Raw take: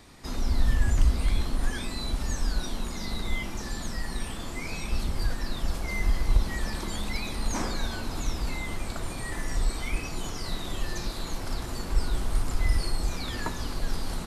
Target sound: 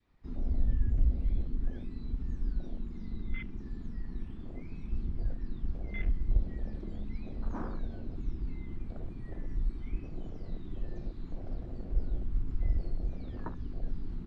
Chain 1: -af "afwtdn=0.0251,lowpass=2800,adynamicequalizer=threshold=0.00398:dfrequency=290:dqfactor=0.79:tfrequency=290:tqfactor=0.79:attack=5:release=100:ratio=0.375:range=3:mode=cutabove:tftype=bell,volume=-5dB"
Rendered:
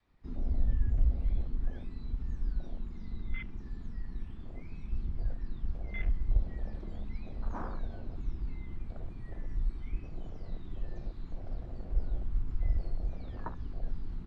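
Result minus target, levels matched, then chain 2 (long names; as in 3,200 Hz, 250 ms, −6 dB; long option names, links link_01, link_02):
250 Hz band −3.5 dB
-af "afwtdn=0.0251,lowpass=2800,adynamicequalizer=threshold=0.00398:dfrequency=790:dqfactor=0.79:tfrequency=790:tqfactor=0.79:attack=5:release=100:ratio=0.375:range=3:mode=cutabove:tftype=bell,volume=-5dB"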